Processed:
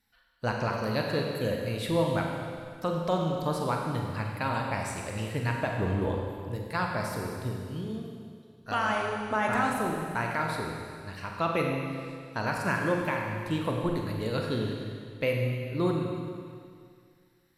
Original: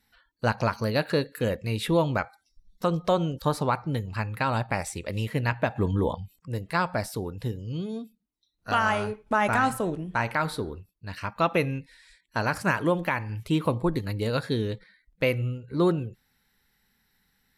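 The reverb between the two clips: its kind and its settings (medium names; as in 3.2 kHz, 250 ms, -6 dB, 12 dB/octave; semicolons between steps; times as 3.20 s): Schroeder reverb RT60 2.2 s, combs from 33 ms, DRR 0.5 dB; trim -5.5 dB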